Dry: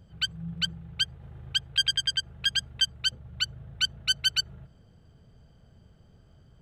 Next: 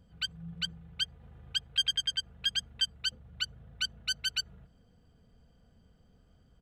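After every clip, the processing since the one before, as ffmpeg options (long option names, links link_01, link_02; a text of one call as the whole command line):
ffmpeg -i in.wav -af "aecho=1:1:4.1:0.44,volume=-6dB" out.wav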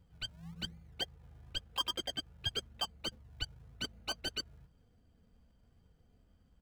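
ffmpeg -i in.wav -filter_complex "[0:a]asplit=2[link_01][link_02];[link_02]acrusher=samples=39:mix=1:aa=0.000001:lfo=1:lforange=39:lforate=0.94,volume=-5dB[link_03];[link_01][link_03]amix=inputs=2:normalize=0,flanger=delay=2.1:depth=1.9:regen=-58:speed=0.85:shape=triangular,volume=-3.5dB" out.wav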